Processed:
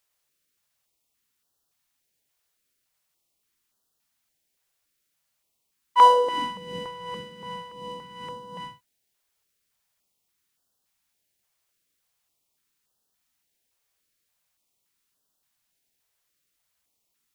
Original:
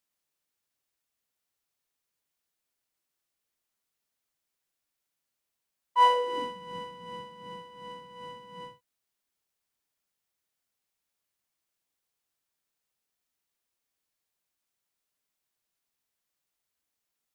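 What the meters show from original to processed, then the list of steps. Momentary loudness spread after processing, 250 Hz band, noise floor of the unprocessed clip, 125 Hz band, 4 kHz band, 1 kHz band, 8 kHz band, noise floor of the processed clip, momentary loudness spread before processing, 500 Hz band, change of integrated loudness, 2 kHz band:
23 LU, +6.0 dB, -85 dBFS, +7.0 dB, +4.5 dB, +6.5 dB, no reading, -77 dBFS, 22 LU, +7.0 dB, +7.5 dB, +2.5 dB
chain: step-sequenced notch 3.5 Hz 240–2200 Hz; trim +8 dB

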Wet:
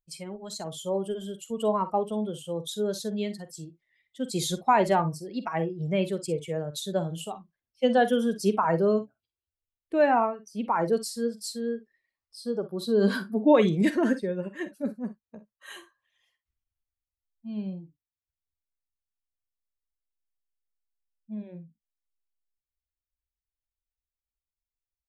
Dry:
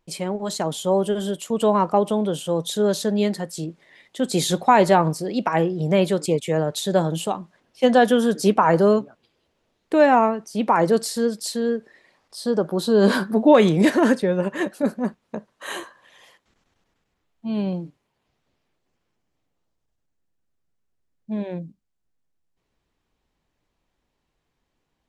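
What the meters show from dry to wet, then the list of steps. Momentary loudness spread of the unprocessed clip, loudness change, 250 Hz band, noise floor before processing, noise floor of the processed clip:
14 LU, -7.0 dB, -7.0 dB, -76 dBFS, under -85 dBFS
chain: expander on every frequency bin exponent 1.5; early reflections 47 ms -13.5 dB, 61 ms -17 dB; trim -4.5 dB

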